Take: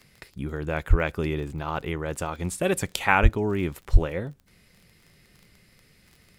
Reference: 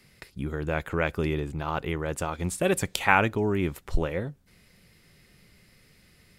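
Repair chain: de-click; de-plosive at 0.89/3.22/3.92

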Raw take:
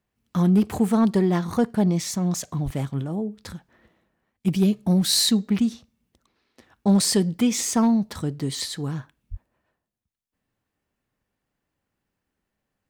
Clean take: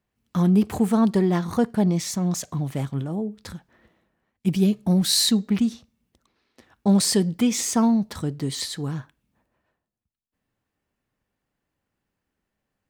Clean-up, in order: clip repair -12 dBFS; 2.64–2.76 HPF 140 Hz 24 dB/oct; 9.3–9.42 HPF 140 Hz 24 dB/oct

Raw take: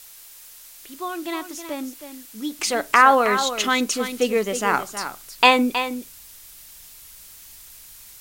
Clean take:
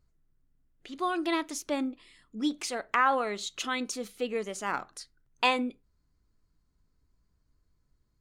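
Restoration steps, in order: noise print and reduce 27 dB; inverse comb 0.318 s -10 dB; gain correction -11 dB, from 2.59

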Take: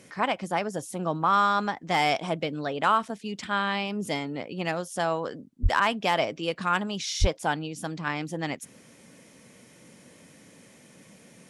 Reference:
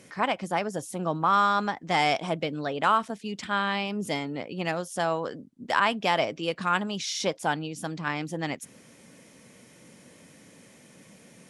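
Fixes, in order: clip repair -11.5 dBFS; 5.62–5.74 HPF 140 Hz 24 dB/oct; 7.2–7.32 HPF 140 Hz 24 dB/oct

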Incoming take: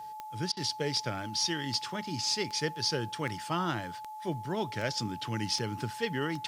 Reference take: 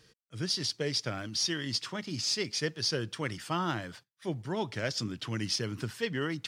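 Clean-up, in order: de-click; notch 860 Hz, Q 30; interpolate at 0.52, 47 ms; expander -35 dBFS, range -21 dB

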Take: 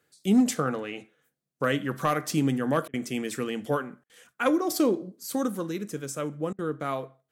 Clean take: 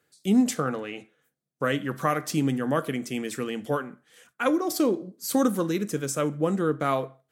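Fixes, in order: clip repair -14 dBFS; interpolate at 2.88/4.04/6.53, 55 ms; gain correction +5.5 dB, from 5.23

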